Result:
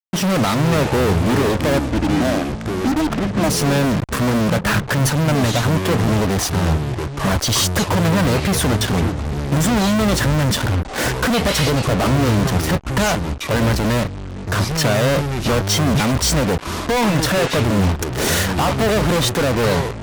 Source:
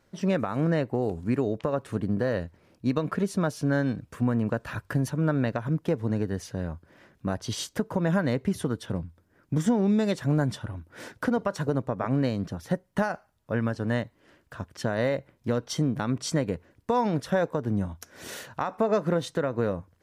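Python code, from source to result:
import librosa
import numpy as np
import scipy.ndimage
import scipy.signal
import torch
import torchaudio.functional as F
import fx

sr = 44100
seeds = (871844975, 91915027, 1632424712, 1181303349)

y = fx.double_bandpass(x, sr, hz=460.0, octaves=1.2, at=(1.78, 3.49))
y = fx.fuzz(y, sr, gain_db=51.0, gate_db=-45.0)
y = fx.echo_pitch(y, sr, ms=206, semitones=-7, count=2, db_per_echo=-6.0)
y = F.gain(torch.from_numpy(y), -2.5).numpy()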